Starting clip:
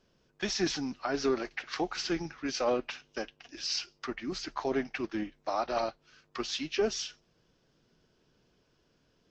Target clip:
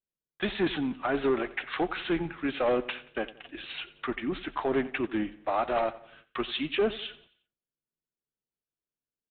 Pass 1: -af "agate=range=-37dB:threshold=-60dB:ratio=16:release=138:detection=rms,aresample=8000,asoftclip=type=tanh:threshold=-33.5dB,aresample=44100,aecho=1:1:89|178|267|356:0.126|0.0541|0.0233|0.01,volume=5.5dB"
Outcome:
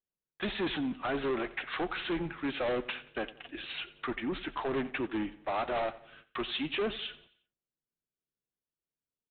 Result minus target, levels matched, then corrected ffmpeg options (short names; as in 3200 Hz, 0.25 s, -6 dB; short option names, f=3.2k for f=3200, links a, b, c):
soft clip: distortion +8 dB
-af "agate=range=-37dB:threshold=-60dB:ratio=16:release=138:detection=rms,aresample=8000,asoftclip=type=tanh:threshold=-24.5dB,aresample=44100,aecho=1:1:89|178|267|356:0.126|0.0541|0.0233|0.01,volume=5.5dB"